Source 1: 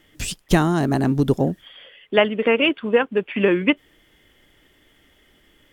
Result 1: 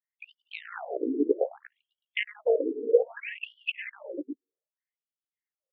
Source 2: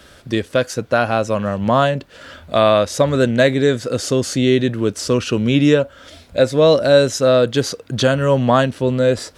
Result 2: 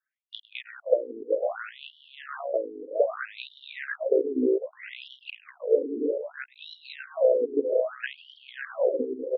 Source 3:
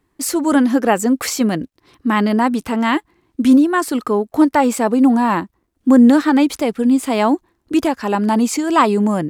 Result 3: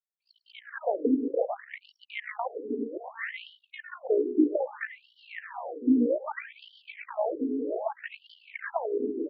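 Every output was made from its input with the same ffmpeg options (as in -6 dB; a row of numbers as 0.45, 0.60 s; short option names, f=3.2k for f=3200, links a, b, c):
-filter_complex "[0:a]acrossover=split=570 2900:gain=0.2 1 0.251[a][b][c];[a][b][c]amix=inputs=3:normalize=0,tremolo=f=58:d=0.667,anlmdn=158,aecho=1:1:103|178|312|355|498|612:0.112|0.106|0.133|0.178|0.299|0.2,acompressor=threshold=-26dB:ratio=5,equalizer=f=125:t=o:w=1:g=7,equalizer=f=250:t=o:w=1:g=9,equalizer=f=500:t=o:w=1:g=11,equalizer=f=1k:t=o:w=1:g=-10,equalizer=f=2k:t=o:w=1:g=9,equalizer=f=8k:t=o:w=1:g=7,afftfilt=real='re*between(b*sr/1024,320*pow(4100/320,0.5+0.5*sin(2*PI*0.63*pts/sr))/1.41,320*pow(4100/320,0.5+0.5*sin(2*PI*0.63*pts/sr))*1.41)':imag='im*between(b*sr/1024,320*pow(4100/320,0.5+0.5*sin(2*PI*0.63*pts/sr))/1.41,320*pow(4100/320,0.5+0.5*sin(2*PI*0.63*pts/sr))*1.41)':win_size=1024:overlap=0.75"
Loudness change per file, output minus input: -10.0, -11.5, -14.5 LU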